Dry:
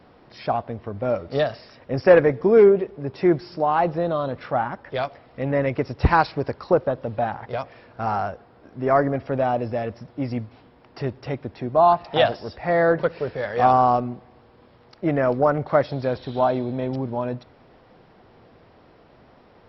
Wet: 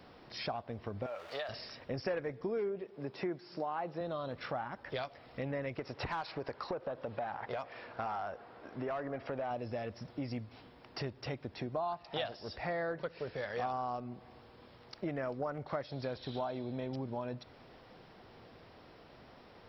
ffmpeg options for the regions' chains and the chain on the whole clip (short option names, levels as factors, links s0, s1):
-filter_complex "[0:a]asettb=1/sr,asplit=3[s0][s1][s2];[s0]atrim=end=1.064[s3];[s1]atrim=start=1.06:end=1.49,asetpts=PTS-STARTPTS,afade=t=in:d=0.004:c=qsin,afade=t=out:st=0.426:d=0.004:c=qsin,aeval=exprs='val(0)+0.5*0.0112*sgn(val(0))':c=same,acrossover=split=570 4000:gain=0.0794 1 0.112[s4][s5][s6];[s4][s5][s6]amix=inputs=3:normalize=0,acompressor=threshold=0.0355:ratio=2:attack=3.2:release=140:knee=1:detection=peak[s7];[s2]atrim=start=1.486[s8];[s3][s7]acrossfade=d=0.004:c1=hsin:c2=qsin[s9];[s9][s8]acrossfade=d=0.004:c1=qsin:c2=hsin,asettb=1/sr,asplit=3[s10][s11][s12];[s10]atrim=end=2.834[s13];[s11]atrim=start=2.83:end=4.01,asetpts=PTS-STARTPTS,afade=t=in:d=0.004:c=qsin,afade=t=out:st=1.176:d=0.004:c=qsin,highpass=160,acrossover=split=2600[s14][s15];[s15]acompressor=threshold=0.00282:ratio=4:attack=1:release=60[s16];[s14][s16]amix=inputs=2:normalize=0[s17];[s12]atrim=start=4.006[s18];[s13][s17]acrossfade=d=0.004:c1=hsin:c2=qsin[s19];[s19][s18]acrossfade=d=0.004:c1=qsin:c2=hsin,asettb=1/sr,asplit=3[s20][s21][s22];[s20]atrim=end=5.794[s23];[s21]atrim=start=5.79:end=9.51,asetpts=PTS-STARTPTS,afade=t=in:d=0.004:c=qsin,afade=t=out:st=3.716:d=0.004:c=qsin,acompressor=threshold=0.0501:ratio=2:attack=3.2:release=140:knee=1:detection=peak,asplit=2[s24][s25];[s25]highpass=f=720:p=1,volume=4.47,asoftclip=type=tanh:threshold=0.251[s26];[s24][s26]amix=inputs=2:normalize=0,lowpass=f=1500:p=1,volume=0.501[s27];[s22]atrim=start=9.506[s28];[s23][s27]acrossfade=d=0.004:c1=hsin:c2=qsin[s29];[s29][s28]acrossfade=d=0.004:c1=qsin:c2=hsin,highshelf=f=2600:g=9.5,acompressor=threshold=0.0251:ratio=4,volume=0.562"